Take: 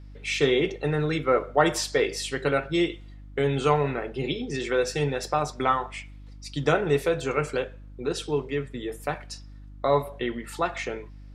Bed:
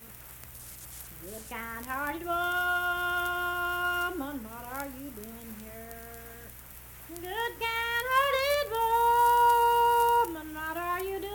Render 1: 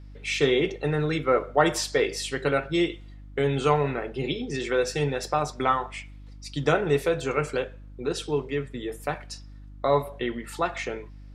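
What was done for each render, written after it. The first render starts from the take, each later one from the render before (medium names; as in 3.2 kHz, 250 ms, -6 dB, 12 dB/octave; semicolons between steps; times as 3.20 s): no audible change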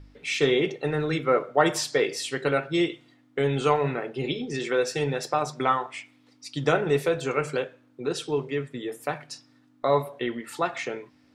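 de-hum 50 Hz, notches 4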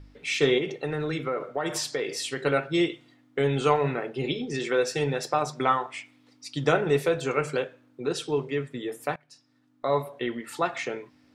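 0.58–2.46 s: compression 4:1, threshold -25 dBFS; 9.16–10.72 s: fade in equal-power, from -22 dB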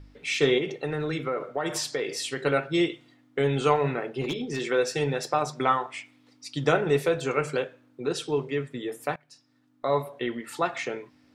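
4.21–4.61 s: overload inside the chain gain 24 dB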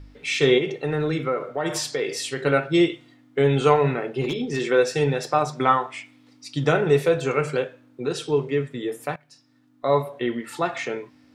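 harmonic-percussive split harmonic +6 dB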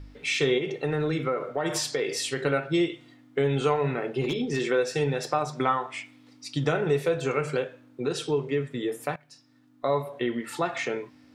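compression 2:1, threshold -25 dBFS, peak gain reduction 8 dB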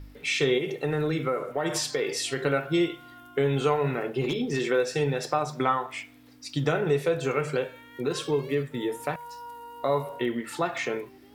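add bed -20 dB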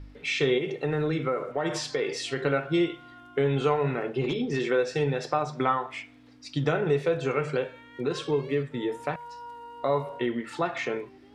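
distance through air 83 m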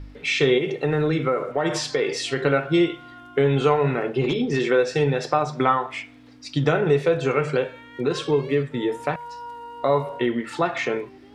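trim +5.5 dB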